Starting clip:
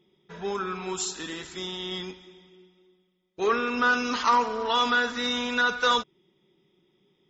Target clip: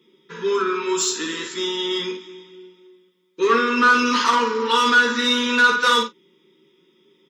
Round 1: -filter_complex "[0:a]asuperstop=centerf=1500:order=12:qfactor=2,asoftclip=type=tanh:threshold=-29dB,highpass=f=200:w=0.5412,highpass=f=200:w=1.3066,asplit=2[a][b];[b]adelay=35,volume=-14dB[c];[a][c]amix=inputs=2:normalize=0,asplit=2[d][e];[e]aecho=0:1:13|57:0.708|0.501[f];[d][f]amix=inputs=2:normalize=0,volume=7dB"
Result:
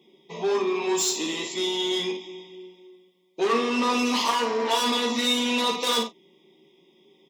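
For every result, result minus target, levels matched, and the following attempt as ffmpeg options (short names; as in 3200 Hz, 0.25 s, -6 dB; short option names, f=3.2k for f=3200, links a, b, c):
2000 Hz band -8.0 dB; soft clip: distortion +6 dB
-filter_complex "[0:a]asuperstop=centerf=690:order=12:qfactor=2,asoftclip=type=tanh:threshold=-29dB,highpass=f=200:w=0.5412,highpass=f=200:w=1.3066,asplit=2[a][b];[b]adelay=35,volume=-14dB[c];[a][c]amix=inputs=2:normalize=0,asplit=2[d][e];[e]aecho=0:1:13|57:0.708|0.501[f];[d][f]amix=inputs=2:normalize=0,volume=7dB"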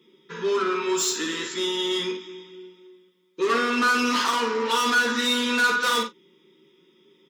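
soft clip: distortion +7 dB
-filter_complex "[0:a]asuperstop=centerf=690:order=12:qfactor=2,asoftclip=type=tanh:threshold=-20dB,highpass=f=200:w=0.5412,highpass=f=200:w=1.3066,asplit=2[a][b];[b]adelay=35,volume=-14dB[c];[a][c]amix=inputs=2:normalize=0,asplit=2[d][e];[e]aecho=0:1:13|57:0.708|0.501[f];[d][f]amix=inputs=2:normalize=0,volume=7dB"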